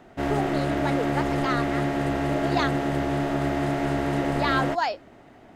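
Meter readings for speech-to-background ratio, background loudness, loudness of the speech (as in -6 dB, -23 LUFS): -4.5 dB, -26.0 LUFS, -30.5 LUFS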